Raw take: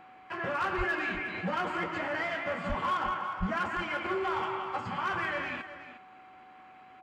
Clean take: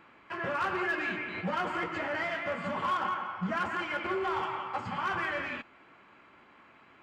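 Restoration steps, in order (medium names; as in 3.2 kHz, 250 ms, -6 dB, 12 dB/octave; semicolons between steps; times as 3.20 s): band-stop 750 Hz, Q 30; de-plosive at 0.77/2.68/3.39 s; inverse comb 360 ms -12.5 dB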